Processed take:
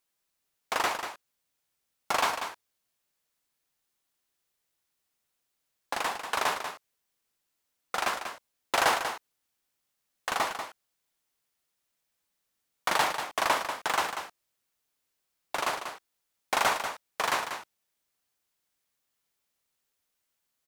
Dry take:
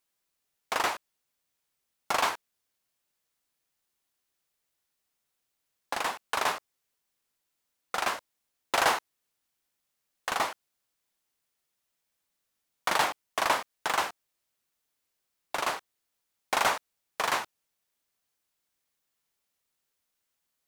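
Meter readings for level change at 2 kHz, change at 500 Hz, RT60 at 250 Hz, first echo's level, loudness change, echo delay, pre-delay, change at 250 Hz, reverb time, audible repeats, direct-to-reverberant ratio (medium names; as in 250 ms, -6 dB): +0.5 dB, +0.5 dB, no reverb, -8.5 dB, 0.0 dB, 190 ms, no reverb, +0.5 dB, no reverb, 1, no reverb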